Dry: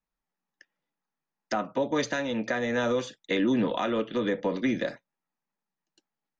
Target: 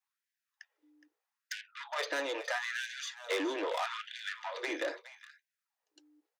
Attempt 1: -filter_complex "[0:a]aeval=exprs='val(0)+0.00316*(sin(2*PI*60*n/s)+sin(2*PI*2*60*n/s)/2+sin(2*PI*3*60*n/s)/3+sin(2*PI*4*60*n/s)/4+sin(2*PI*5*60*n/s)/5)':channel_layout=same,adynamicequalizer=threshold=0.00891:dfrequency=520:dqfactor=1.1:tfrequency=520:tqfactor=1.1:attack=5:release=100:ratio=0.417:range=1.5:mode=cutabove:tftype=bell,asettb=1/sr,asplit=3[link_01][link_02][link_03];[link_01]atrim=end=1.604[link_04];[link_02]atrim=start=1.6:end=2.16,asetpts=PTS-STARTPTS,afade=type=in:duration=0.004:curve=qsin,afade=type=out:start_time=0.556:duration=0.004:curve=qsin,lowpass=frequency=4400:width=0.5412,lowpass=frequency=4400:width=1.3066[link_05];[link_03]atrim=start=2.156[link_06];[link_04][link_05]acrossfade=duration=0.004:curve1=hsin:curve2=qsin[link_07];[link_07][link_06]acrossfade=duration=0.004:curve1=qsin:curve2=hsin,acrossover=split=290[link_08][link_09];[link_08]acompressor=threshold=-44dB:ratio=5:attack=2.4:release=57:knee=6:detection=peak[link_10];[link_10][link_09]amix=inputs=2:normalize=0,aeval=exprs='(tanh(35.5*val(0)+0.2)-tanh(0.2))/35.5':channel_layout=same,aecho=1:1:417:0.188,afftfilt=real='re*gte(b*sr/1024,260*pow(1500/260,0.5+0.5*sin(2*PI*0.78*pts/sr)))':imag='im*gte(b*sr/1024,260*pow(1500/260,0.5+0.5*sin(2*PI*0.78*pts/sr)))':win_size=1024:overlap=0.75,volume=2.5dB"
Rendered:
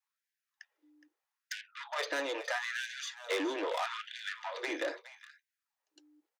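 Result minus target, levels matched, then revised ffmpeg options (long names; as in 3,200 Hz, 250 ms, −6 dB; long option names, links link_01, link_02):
downward compressor: peak gain reduction −5.5 dB
-filter_complex "[0:a]aeval=exprs='val(0)+0.00316*(sin(2*PI*60*n/s)+sin(2*PI*2*60*n/s)/2+sin(2*PI*3*60*n/s)/3+sin(2*PI*4*60*n/s)/4+sin(2*PI*5*60*n/s)/5)':channel_layout=same,adynamicequalizer=threshold=0.00891:dfrequency=520:dqfactor=1.1:tfrequency=520:tqfactor=1.1:attack=5:release=100:ratio=0.417:range=1.5:mode=cutabove:tftype=bell,asettb=1/sr,asplit=3[link_01][link_02][link_03];[link_01]atrim=end=1.604[link_04];[link_02]atrim=start=1.6:end=2.16,asetpts=PTS-STARTPTS,afade=type=in:duration=0.004:curve=qsin,afade=type=out:start_time=0.556:duration=0.004:curve=qsin,lowpass=frequency=4400:width=0.5412,lowpass=frequency=4400:width=1.3066[link_05];[link_03]atrim=start=2.156[link_06];[link_04][link_05]acrossfade=duration=0.004:curve1=hsin:curve2=qsin[link_07];[link_07][link_06]acrossfade=duration=0.004:curve1=qsin:curve2=hsin,acrossover=split=290[link_08][link_09];[link_08]acompressor=threshold=-51dB:ratio=5:attack=2.4:release=57:knee=6:detection=peak[link_10];[link_10][link_09]amix=inputs=2:normalize=0,aeval=exprs='(tanh(35.5*val(0)+0.2)-tanh(0.2))/35.5':channel_layout=same,aecho=1:1:417:0.188,afftfilt=real='re*gte(b*sr/1024,260*pow(1500/260,0.5+0.5*sin(2*PI*0.78*pts/sr)))':imag='im*gte(b*sr/1024,260*pow(1500/260,0.5+0.5*sin(2*PI*0.78*pts/sr)))':win_size=1024:overlap=0.75,volume=2.5dB"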